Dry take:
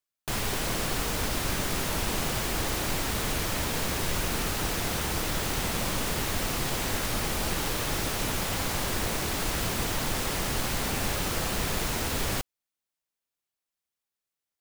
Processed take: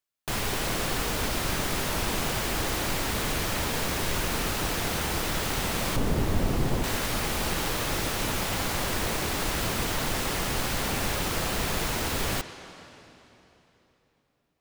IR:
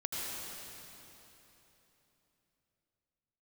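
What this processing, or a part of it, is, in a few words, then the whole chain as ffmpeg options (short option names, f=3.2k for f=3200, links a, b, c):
filtered reverb send: -filter_complex "[0:a]asplit=2[a][b];[b]highpass=f=320:p=1,lowpass=5.4k[c];[1:a]atrim=start_sample=2205[d];[c][d]afir=irnorm=-1:irlink=0,volume=-12dB[e];[a][e]amix=inputs=2:normalize=0,asettb=1/sr,asplit=3[f][g][h];[f]atrim=end=5.964[i];[g]atrim=start=5.96:end=6.84,asetpts=PTS-STARTPTS,afade=t=in:d=0.004:c=qsin,afade=t=out:st=0.876:d=0.004:c=qsin,tiltshelf=f=730:g=7.5[j];[h]atrim=start=6.836[k];[i][j]acrossfade=d=0.004:c1=hsin:c2=qsin[l];[l][k]acrossfade=d=0.004:c1=qsin:c2=hsin"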